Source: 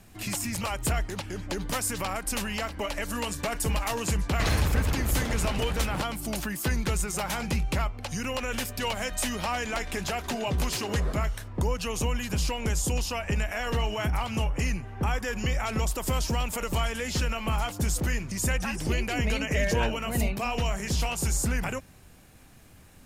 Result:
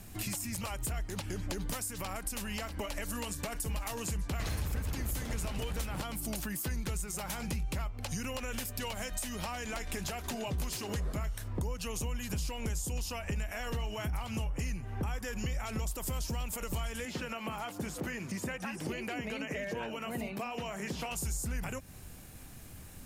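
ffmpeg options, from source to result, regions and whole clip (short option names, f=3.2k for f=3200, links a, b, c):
-filter_complex "[0:a]asettb=1/sr,asplit=3[a][b][c];[a]atrim=end=17.054[d];[b]atrim=start=17.05:end=21.11,asetpts=PTS-STARTPTS,afade=t=in:d=0.004:c=qsin,afade=t=out:st=4.056:d=0.004:c=qsin,highpass=200,acrossover=split=3100[e][f];[f]acompressor=threshold=-49dB:ratio=4:attack=1:release=60[g];[e][g]amix=inputs=2:normalize=0[h];[c]atrim=start=21.106[i];[d][h]acrossfade=d=0.004:c1=hsin:c2=qsin[j];[j][i]acrossfade=d=0.004:c1=qsin:c2=hsin,highshelf=f=6.8k:g=9,acompressor=threshold=-36dB:ratio=6,lowshelf=f=240:g=5"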